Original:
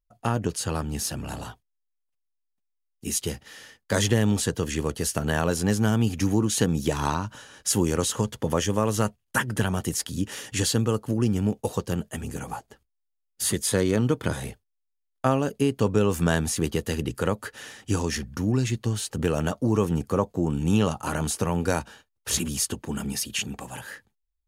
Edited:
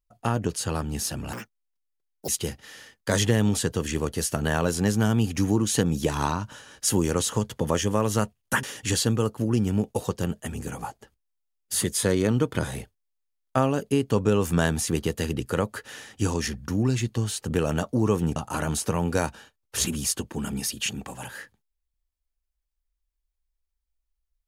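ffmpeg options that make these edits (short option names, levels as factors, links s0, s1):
-filter_complex "[0:a]asplit=5[s0][s1][s2][s3][s4];[s0]atrim=end=1.334[s5];[s1]atrim=start=1.33:end=3.11,asetpts=PTS-STARTPTS,asetrate=82467,aresample=44100[s6];[s2]atrim=start=3.106:end=9.462[s7];[s3]atrim=start=10.318:end=20.052[s8];[s4]atrim=start=20.888[s9];[s5][s6]acrossfade=d=0.004:c1=hsin:c2=hsin[s10];[s10][s7]acrossfade=d=0.004:c1=hsin:c2=hsin[s11];[s11][s8]acrossfade=d=0.004:c1=hsin:c2=hsin[s12];[s12][s9]acrossfade=d=0.004:c1=hsin:c2=hsin"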